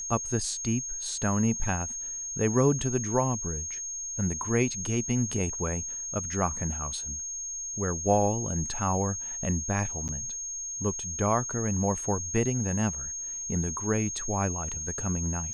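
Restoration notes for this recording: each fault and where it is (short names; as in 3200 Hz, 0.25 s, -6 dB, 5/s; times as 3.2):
tone 6500 Hz -33 dBFS
10.08–10.09 gap 8.6 ms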